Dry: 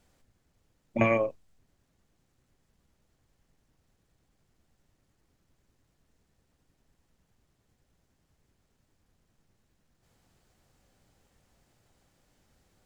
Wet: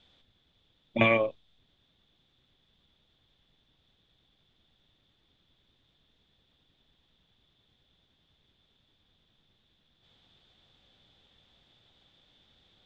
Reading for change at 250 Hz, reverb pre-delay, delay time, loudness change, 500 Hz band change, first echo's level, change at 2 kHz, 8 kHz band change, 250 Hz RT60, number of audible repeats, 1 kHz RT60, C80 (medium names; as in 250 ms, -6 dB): 0.0 dB, no reverb, no echo, +1.5 dB, 0.0 dB, no echo, +5.0 dB, no reading, no reverb, no echo, no reverb, no reverb